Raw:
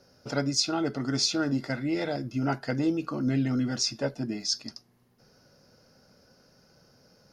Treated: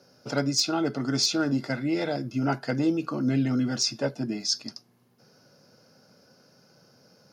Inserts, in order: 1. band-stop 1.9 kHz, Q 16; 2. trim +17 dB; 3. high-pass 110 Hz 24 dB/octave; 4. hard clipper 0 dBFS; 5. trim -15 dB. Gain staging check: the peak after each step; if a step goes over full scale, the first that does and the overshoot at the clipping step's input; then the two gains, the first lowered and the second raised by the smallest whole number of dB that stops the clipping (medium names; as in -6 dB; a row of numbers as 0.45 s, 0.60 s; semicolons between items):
-10.5 dBFS, +6.5 dBFS, +6.5 dBFS, 0.0 dBFS, -15.0 dBFS; step 2, 6.5 dB; step 2 +10 dB, step 5 -8 dB